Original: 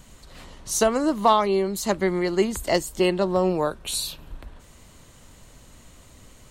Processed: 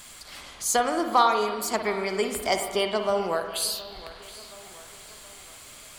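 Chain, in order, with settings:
low-shelf EQ 370 Hz −11.5 dB
feedback echo with a low-pass in the loop 786 ms, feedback 45%, low-pass 3,400 Hz, level −19 dB
spring reverb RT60 1.4 s, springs 51/58 ms, chirp 25 ms, DRR 5.5 dB
wrong playback speed 44.1 kHz file played as 48 kHz
one half of a high-frequency compander encoder only

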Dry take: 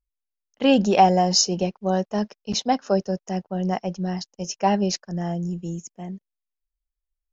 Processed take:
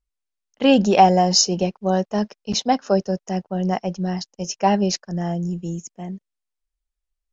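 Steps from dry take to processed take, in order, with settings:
floating-point word with a short mantissa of 8 bits
downsampling to 22,050 Hz
level +2.5 dB

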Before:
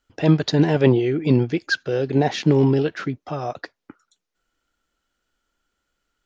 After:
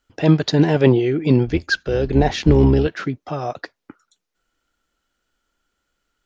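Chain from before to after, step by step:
0:01.46–0:02.87: sub-octave generator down 2 octaves, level −2 dB
level +2 dB

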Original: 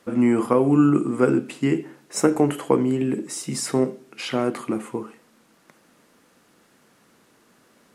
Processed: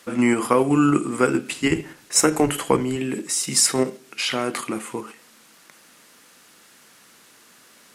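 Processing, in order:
0:01.51–0:02.96: sub-octave generator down 1 octave, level −5 dB
tilt shelving filter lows −7 dB, about 1,200 Hz
in parallel at +3 dB: output level in coarse steps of 12 dB
on the sum: level −1 dB

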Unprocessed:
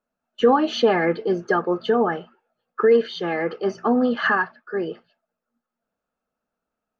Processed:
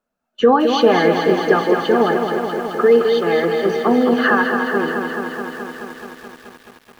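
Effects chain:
echo with a time of its own for lows and highs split 610 Hz, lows 101 ms, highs 264 ms, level −14 dB
feedback echo at a low word length 214 ms, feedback 80%, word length 8 bits, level −6 dB
level +3.5 dB

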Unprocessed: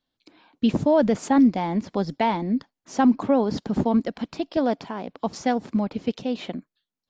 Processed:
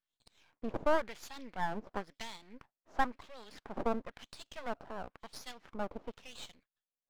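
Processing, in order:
auto-filter band-pass sine 0.97 Hz 560–4,200 Hz
half-wave rectification

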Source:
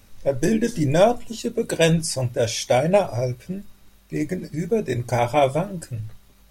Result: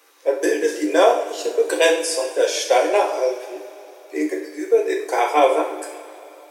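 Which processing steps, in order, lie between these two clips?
Chebyshev high-pass with heavy ripple 300 Hz, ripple 6 dB
coupled-rooms reverb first 0.56 s, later 3.4 s, from −17 dB, DRR 0.5 dB
level +5.5 dB

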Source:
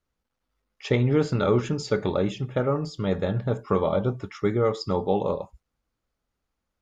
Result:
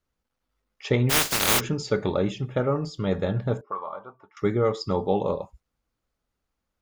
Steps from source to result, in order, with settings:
0:01.09–0:01.59: compressing power law on the bin magnitudes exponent 0.13
0:03.61–0:04.37: envelope filter 450–1,100 Hz, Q 3.7, up, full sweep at −23 dBFS

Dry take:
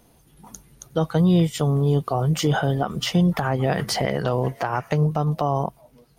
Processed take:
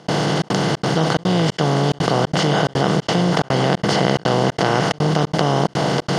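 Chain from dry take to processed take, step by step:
compressor on every frequency bin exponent 0.2
high-pass filter 110 Hz
high-shelf EQ 7,300 Hz +8 dB
gate pattern ".xxxx.xxx" 180 BPM −60 dB
high-frequency loss of the air 110 metres
envelope flattener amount 70%
level −4 dB

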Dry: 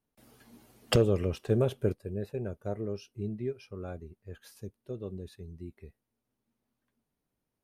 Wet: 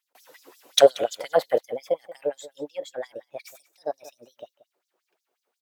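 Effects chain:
gliding playback speed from 116% → 156%
slap from a distant wall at 31 metres, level −17 dB
auto-filter high-pass sine 5.6 Hz 440–5,900 Hz
level +7 dB

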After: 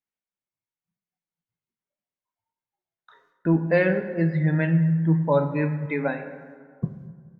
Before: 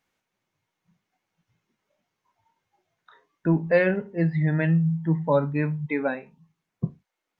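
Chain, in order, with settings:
noise gate with hold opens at −56 dBFS
dense smooth reverb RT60 1.9 s, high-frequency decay 0.5×, DRR 8.5 dB

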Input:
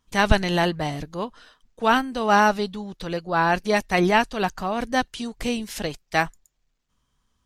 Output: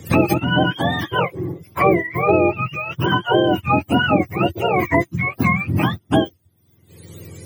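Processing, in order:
frequency axis turned over on the octave scale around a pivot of 720 Hz
hollow resonant body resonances 350/1,900 Hz, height 8 dB
multiband upward and downward compressor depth 100%
level +3.5 dB

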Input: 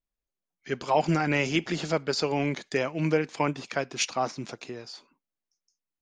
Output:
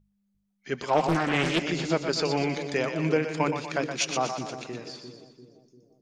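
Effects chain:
hum with harmonics 50 Hz, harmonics 4, −63 dBFS −4 dB per octave
mains-hum notches 50/100/150 Hz
echo with a time of its own for lows and highs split 460 Hz, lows 346 ms, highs 121 ms, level −7 dB
0:00.89–0:01.63: highs frequency-modulated by the lows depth 0.72 ms

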